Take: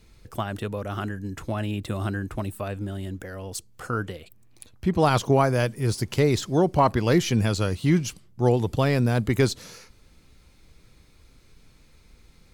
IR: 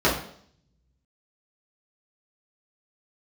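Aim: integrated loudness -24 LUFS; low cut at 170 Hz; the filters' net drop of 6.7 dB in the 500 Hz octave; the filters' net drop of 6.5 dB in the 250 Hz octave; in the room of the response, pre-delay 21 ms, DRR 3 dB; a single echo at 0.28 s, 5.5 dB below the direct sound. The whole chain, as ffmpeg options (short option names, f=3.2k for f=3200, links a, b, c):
-filter_complex "[0:a]highpass=170,equalizer=f=250:t=o:g=-5,equalizer=f=500:t=o:g=-7,aecho=1:1:280:0.531,asplit=2[a][b];[1:a]atrim=start_sample=2205,adelay=21[c];[b][c]afir=irnorm=-1:irlink=0,volume=-21.5dB[d];[a][d]amix=inputs=2:normalize=0,volume=2.5dB"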